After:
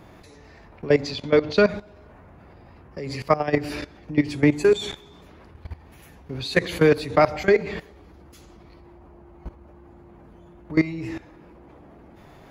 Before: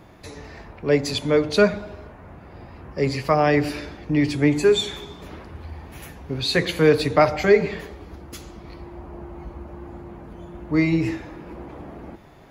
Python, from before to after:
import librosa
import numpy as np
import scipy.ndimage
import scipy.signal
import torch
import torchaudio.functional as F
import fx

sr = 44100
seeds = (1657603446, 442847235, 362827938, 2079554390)

y = fx.high_shelf_res(x, sr, hz=6900.0, db=-13.5, q=1.5, at=(1.02, 1.69))
y = fx.level_steps(y, sr, step_db=17)
y = y * 10.0 ** (3.0 / 20.0)